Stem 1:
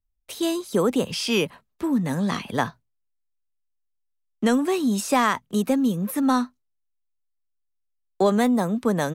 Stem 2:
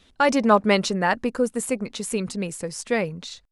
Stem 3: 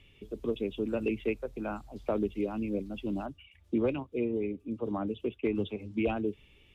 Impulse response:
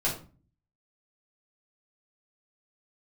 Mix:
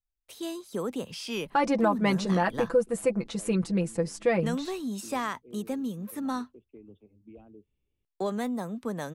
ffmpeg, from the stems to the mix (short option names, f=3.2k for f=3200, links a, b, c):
-filter_complex "[0:a]volume=-11dB[a];[1:a]highshelf=f=2k:g=-9.5,aecho=1:1:6:0.76,alimiter=limit=-13dB:level=0:latency=1:release=370,adelay=1350,volume=-1dB[b];[2:a]equalizer=f=2.8k:w=0.41:g=-13.5,adelay=1300,volume=-18.5dB[c];[a][b][c]amix=inputs=3:normalize=0"